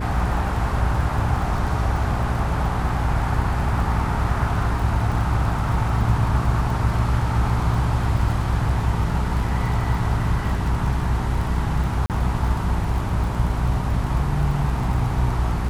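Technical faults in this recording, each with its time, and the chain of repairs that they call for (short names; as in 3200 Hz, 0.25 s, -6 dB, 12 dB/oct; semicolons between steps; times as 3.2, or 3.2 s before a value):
crackle 31/s -29 dBFS
hum 60 Hz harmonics 7 -25 dBFS
12.06–12.1 gap 38 ms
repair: de-click; de-hum 60 Hz, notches 7; interpolate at 12.06, 38 ms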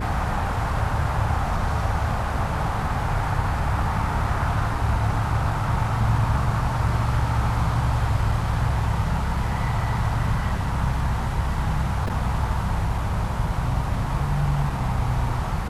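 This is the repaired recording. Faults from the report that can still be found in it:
none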